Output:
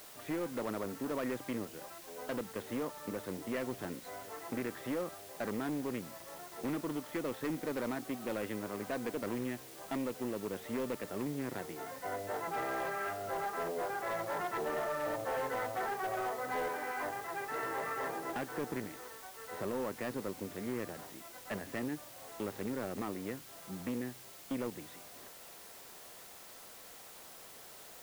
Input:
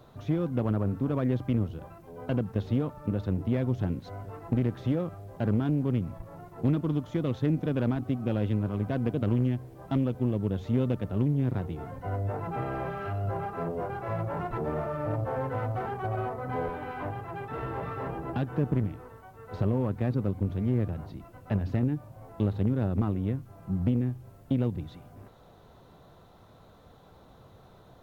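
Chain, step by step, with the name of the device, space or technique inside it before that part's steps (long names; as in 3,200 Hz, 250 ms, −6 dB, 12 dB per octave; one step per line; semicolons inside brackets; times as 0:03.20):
drive-through speaker (band-pass filter 370–3,100 Hz; parametric band 1,900 Hz +10 dB 0.46 octaves; hard clipping −29.5 dBFS, distortion −14 dB; white noise bed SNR 14 dB)
level −1.5 dB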